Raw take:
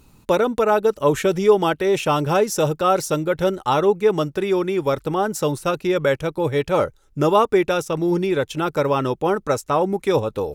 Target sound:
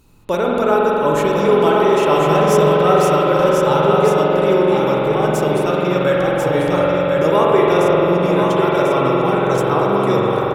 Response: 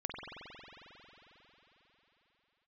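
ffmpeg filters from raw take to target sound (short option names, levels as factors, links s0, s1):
-filter_complex "[0:a]aecho=1:1:1043:0.596[s0];[1:a]atrim=start_sample=2205[s1];[s0][s1]afir=irnorm=-1:irlink=0,volume=1.12"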